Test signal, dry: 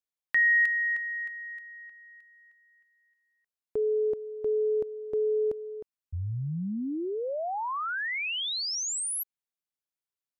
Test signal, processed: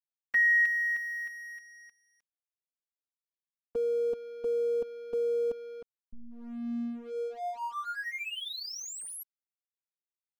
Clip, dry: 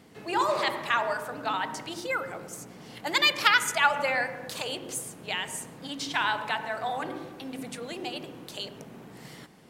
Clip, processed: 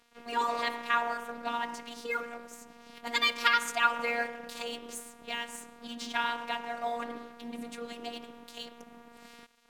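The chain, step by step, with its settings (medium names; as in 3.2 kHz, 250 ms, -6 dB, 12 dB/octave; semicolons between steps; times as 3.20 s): robot voice 236 Hz; treble shelf 4.1 kHz -6 dB; crossover distortion -51.5 dBFS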